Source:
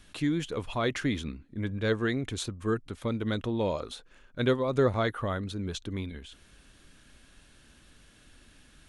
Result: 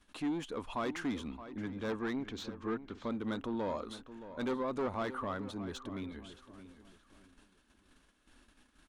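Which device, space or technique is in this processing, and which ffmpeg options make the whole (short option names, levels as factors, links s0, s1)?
saturation between pre-emphasis and de-emphasis: -filter_complex "[0:a]asettb=1/sr,asplit=3[s0][s1][s2];[s0]atrim=end=1.994[s3];[s1]atrim=start=1.99:end=3.09,asetpts=PTS-STARTPTS,afade=t=in:d=0.004:c=qsin,afade=t=out:st=1.096:d=0.004:c=qsin,lowpass=f=5900:w=0.5412,lowpass=f=5900:w=1.3066[s4];[s2]atrim=start=3.086[s5];[s3][s4]acrossfade=d=0.004:c1=hsin:c2=qsin[s6];[s6][s5]acrossfade=d=0.004:c1=qsin:c2=hsin,highshelf=f=2700:g=6.5,asoftclip=type=tanh:threshold=0.0473,highshelf=f=2700:g=-6.5,agate=range=0.316:threshold=0.00178:ratio=16:detection=peak,equalizer=f=125:t=o:w=1:g=-9,equalizer=f=250:t=o:w=1:g=7,equalizer=f=1000:t=o:w=1:g=8,asplit=2[s7][s8];[s8]adelay=622,lowpass=f=3200:p=1,volume=0.224,asplit=2[s9][s10];[s10]adelay=622,lowpass=f=3200:p=1,volume=0.33,asplit=2[s11][s12];[s12]adelay=622,lowpass=f=3200:p=1,volume=0.33[s13];[s7][s9][s11][s13]amix=inputs=4:normalize=0,volume=0.447"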